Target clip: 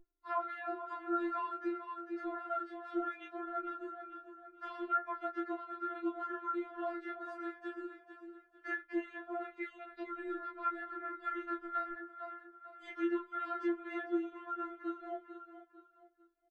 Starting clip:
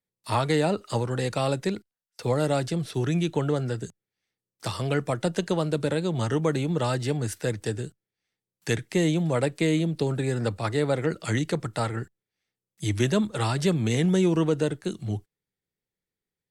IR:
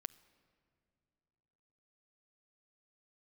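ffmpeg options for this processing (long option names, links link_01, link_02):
-filter_complex "[0:a]lowpass=frequency=1500:width_type=q:width=6,afreqshift=-41,highpass=150,equalizer=frequency=750:width=5:gain=4.5,aecho=1:1:447|894|1341:0.2|0.0658|0.0217,acompressor=threshold=-33dB:ratio=2.5[link_01];[1:a]atrim=start_sample=2205,atrim=end_sample=3969,asetrate=41895,aresample=44100[link_02];[link_01][link_02]afir=irnorm=-1:irlink=0,aeval=exprs='val(0)+0.00251*(sin(2*PI*60*n/s)+sin(2*PI*2*60*n/s)/2+sin(2*PI*3*60*n/s)/3+sin(2*PI*4*60*n/s)/4+sin(2*PI*5*60*n/s)/5)':channel_layout=same,flanger=delay=20:depth=6.7:speed=0.21,asettb=1/sr,asplit=3[link_03][link_04][link_05];[link_03]atrim=end=9.654[link_06];[link_04]atrim=start=9.65:end=11.93,asetpts=PTS-STARTPTS,afade=type=in:duration=0.004:curve=qsin,afade=type=out:start_time=2.276:duration=0.004:curve=qsin,asubboost=boost=10:cutoff=210[link_07];[link_05]atrim=start=11.926[link_08];[link_06][link_07]acrossfade=duration=0.004:curve1=hsin:curve2=qsin[link_09];[link_09][link_08]acrossfade=duration=0.004:curve1=qsin:curve2=hsin,afftfilt=real='re*4*eq(mod(b,16),0)':imag='im*4*eq(mod(b,16),0)':win_size=2048:overlap=0.75,volume=3.5dB"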